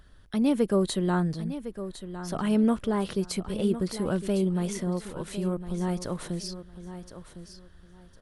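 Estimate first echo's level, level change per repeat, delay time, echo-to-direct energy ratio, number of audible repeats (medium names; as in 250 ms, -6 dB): -12.0 dB, -13.0 dB, 1057 ms, -12.0 dB, 2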